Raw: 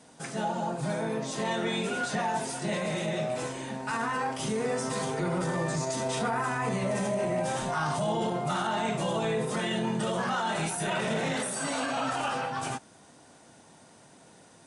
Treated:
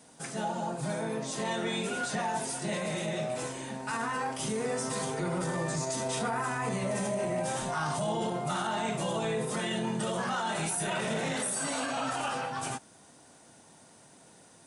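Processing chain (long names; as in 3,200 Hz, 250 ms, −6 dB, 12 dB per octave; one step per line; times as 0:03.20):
high-shelf EQ 9,600 Hz +11 dB
level −2.5 dB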